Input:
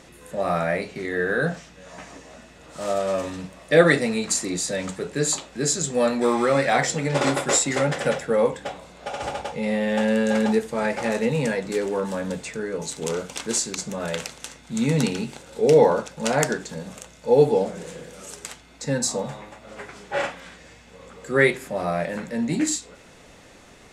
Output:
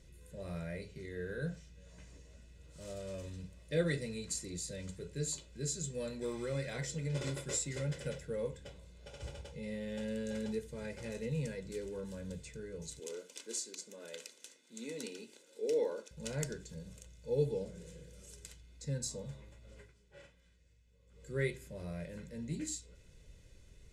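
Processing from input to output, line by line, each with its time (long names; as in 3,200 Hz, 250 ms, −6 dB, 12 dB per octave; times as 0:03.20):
0:12.99–0:16.11: Butterworth high-pass 250 Hz
0:19.75–0:21.26: duck −12 dB, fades 0.19 s
whole clip: guitar amp tone stack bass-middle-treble 10-0-1; comb filter 2 ms, depth 54%; level +4.5 dB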